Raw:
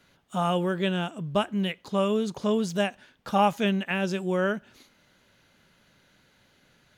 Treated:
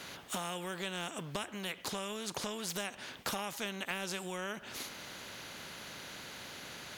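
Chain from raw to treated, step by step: HPF 180 Hz 6 dB/oct; compressor 6:1, threshold -38 dBFS, peak gain reduction 19.5 dB; spectral compressor 2:1; gain +6 dB

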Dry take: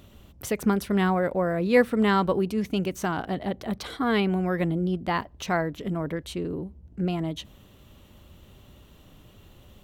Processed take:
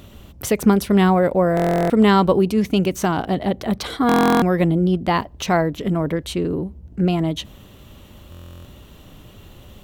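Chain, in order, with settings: dynamic EQ 1600 Hz, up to -5 dB, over -42 dBFS, Q 1.6; stuck buffer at 1.55/4.07/8.3, samples 1024, times 14; gain +8.5 dB

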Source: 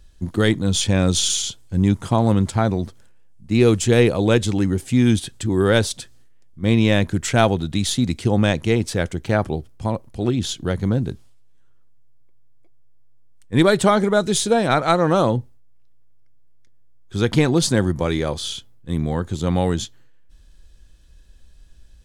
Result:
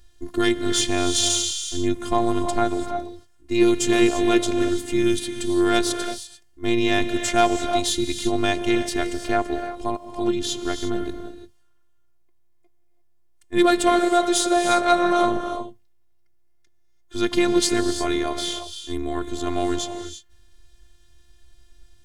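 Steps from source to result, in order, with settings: low shelf 200 Hz -4 dB; in parallel at -4.5 dB: sine folder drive 4 dB, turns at -3 dBFS; on the sum: non-linear reverb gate 0.37 s rising, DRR 7.5 dB; robotiser 349 Hz; gain -6 dB

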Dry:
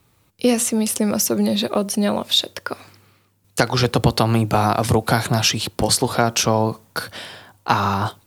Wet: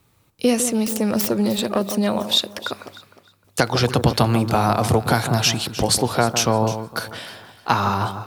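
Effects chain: 0.78–2.07 self-modulated delay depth 0.13 ms; on a send: echo with dull and thin repeats by turns 0.153 s, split 1300 Hz, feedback 50%, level -9 dB; on the sum: gain -1 dB

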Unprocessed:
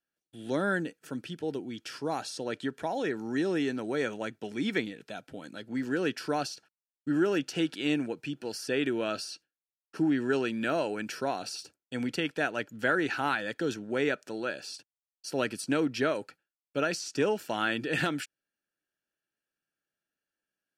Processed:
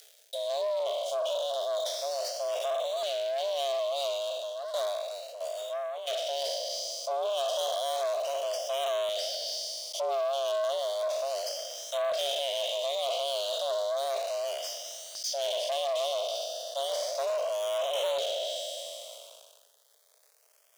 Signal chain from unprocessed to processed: spectral trails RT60 1.47 s; Chebyshev band-stop 240–2900 Hz, order 4; treble ducked by the level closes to 2600 Hz, closed at -34 dBFS; tone controls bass -5 dB, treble -7 dB; upward compressor, threshold -46 dBFS; sample leveller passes 5; 4.07–6.27 tremolo saw down 1.5 Hz, depth 70%; frequency shift +410 Hz; LFO notch saw up 0.33 Hz 980–5300 Hz; sustainer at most 37 dB/s; gain -1 dB

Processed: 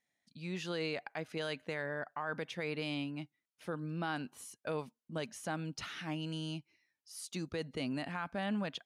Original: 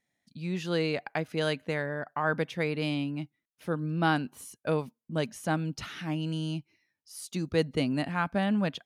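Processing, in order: LPF 11000 Hz 12 dB/oct; low shelf 360 Hz -7.5 dB; limiter -25 dBFS, peak gain reduction 9 dB; gain -2.5 dB

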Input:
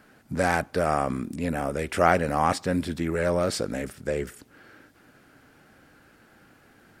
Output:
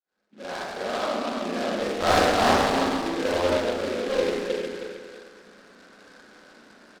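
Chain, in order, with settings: opening faded in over 2.25 s; LPC vocoder at 8 kHz pitch kept; Chebyshev band-pass 200–2900 Hz, order 4; on a send: feedback echo 0.314 s, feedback 27%, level -5.5 dB; 1.84–3.8 on the sum: expander -21 dBFS; one-sided clip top -27 dBFS; Schroeder reverb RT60 1.6 s, combs from 30 ms, DRR -9.5 dB; noise-modulated delay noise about 2500 Hz, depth 0.063 ms; gain -3.5 dB

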